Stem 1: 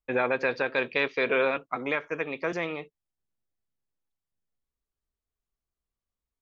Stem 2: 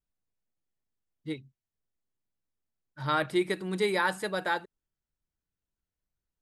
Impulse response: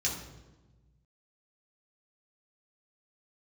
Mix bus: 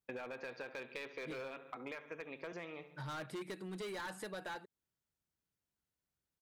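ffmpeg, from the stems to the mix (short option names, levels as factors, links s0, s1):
-filter_complex "[0:a]agate=range=0.1:threshold=0.00891:ratio=16:detection=peak,volume=0.398,asplit=3[s0][s1][s2];[s1]volume=0.0708[s3];[s2]volume=0.158[s4];[1:a]highpass=85,volume=1[s5];[2:a]atrim=start_sample=2205[s6];[s3][s6]afir=irnorm=-1:irlink=0[s7];[s4]aecho=0:1:68|136|204|272|340|408|476:1|0.48|0.23|0.111|0.0531|0.0255|0.0122[s8];[s0][s5][s7][s8]amix=inputs=4:normalize=0,volume=25.1,asoftclip=hard,volume=0.0398,acompressor=threshold=0.00708:ratio=6"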